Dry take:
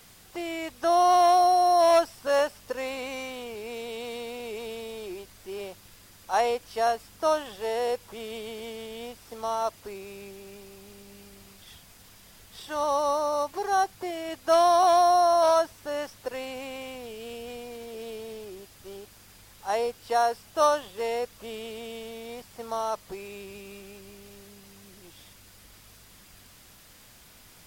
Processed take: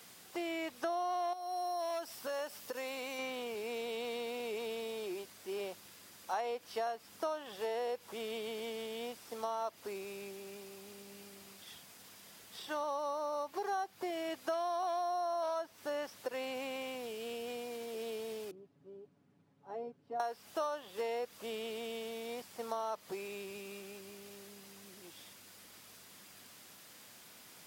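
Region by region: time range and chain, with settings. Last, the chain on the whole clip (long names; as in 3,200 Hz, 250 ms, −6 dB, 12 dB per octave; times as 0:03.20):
0:01.33–0:03.19: high-shelf EQ 4,700 Hz +9.5 dB + downward compressor 2.5 to 1, threshold −36 dBFS + mains-hum notches 60/120/180 Hz
0:18.51–0:20.20: resonant band-pass 180 Hz, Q 1.7 + comb filter 7.1 ms, depth 88%
whole clip: dynamic equaliser 8,800 Hz, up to −6 dB, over −51 dBFS, Q 0.86; downward compressor 8 to 1, threshold −31 dBFS; high-pass filter 190 Hz 12 dB per octave; level −2.5 dB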